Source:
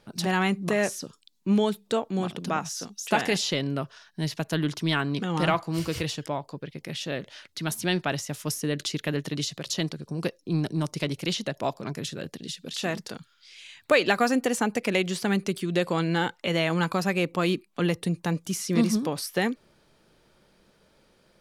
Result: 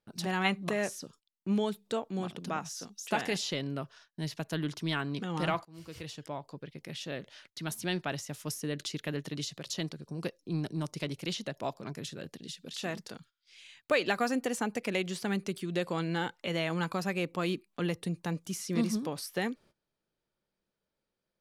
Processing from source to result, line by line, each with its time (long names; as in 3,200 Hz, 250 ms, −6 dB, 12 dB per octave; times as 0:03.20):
0:00.45–0:00.69: gain on a spectral selection 530–4,400 Hz +8 dB
0:05.65–0:06.50: fade in, from −23.5 dB
whole clip: noise gate −50 dBFS, range −18 dB; level −7 dB